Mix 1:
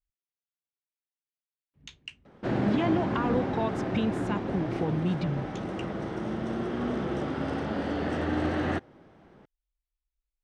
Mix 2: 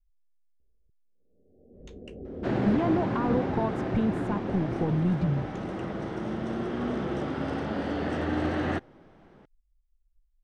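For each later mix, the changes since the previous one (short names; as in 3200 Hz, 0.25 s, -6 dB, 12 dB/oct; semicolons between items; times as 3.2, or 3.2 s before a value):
speech: remove weighting filter D; first sound: unmuted; master: add high shelf 10000 Hz -3 dB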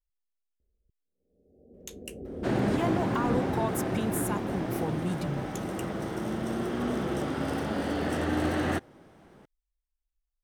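speech: add tilt +3 dB/oct; master: remove air absorption 130 m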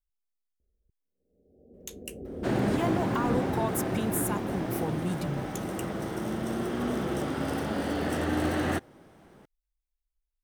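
master: add high shelf 11000 Hz +7.5 dB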